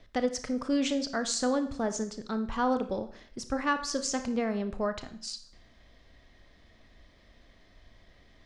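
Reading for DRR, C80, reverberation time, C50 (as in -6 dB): 9.0 dB, 15.5 dB, 0.60 s, 12.0 dB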